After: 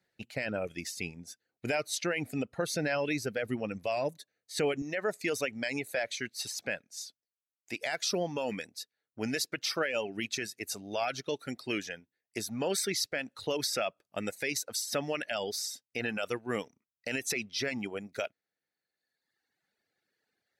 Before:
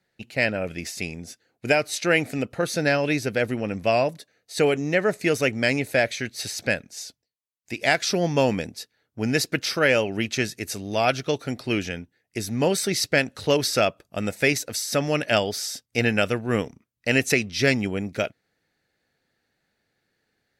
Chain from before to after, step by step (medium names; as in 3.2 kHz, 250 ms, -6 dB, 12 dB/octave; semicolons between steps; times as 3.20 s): high-pass 58 Hz 6 dB/octave, from 4.82 s 300 Hz; peak limiter -15.5 dBFS, peak gain reduction 10.5 dB; reverb removal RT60 1.4 s; trim -4.5 dB